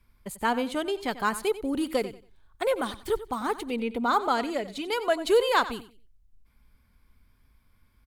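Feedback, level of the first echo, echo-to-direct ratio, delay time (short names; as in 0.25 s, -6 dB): 24%, -15.0 dB, -14.5 dB, 92 ms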